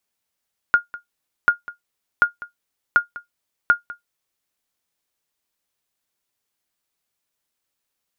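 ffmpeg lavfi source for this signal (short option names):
-f lavfi -i "aevalsrc='0.562*(sin(2*PI*1420*mod(t,0.74))*exp(-6.91*mod(t,0.74)/0.13)+0.112*sin(2*PI*1420*max(mod(t,0.74)-0.2,0))*exp(-6.91*max(mod(t,0.74)-0.2,0)/0.13))':d=3.7:s=44100"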